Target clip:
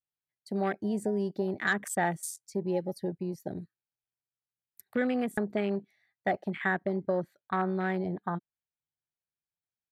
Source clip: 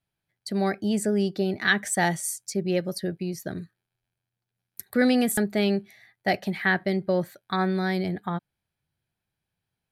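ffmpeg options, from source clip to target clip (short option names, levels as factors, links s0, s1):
-filter_complex "[0:a]asetnsamples=n=441:p=0,asendcmd='4.81 highshelf g -9.5',highshelf=f=7600:g=3,afwtdn=0.0251,acrossover=split=1600|7700[s0][s1][s2];[s0]acompressor=threshold=0.0708:ratio=4[s3];[s1]acompressor=threshold=0.00891:ratio=4[s4];[s2]acompressor=threshold=0.00891:ratio=4[s5];[s3][s4][s5]amix=inputs=3:normalize=0,lowshelf=f=260:g=-7"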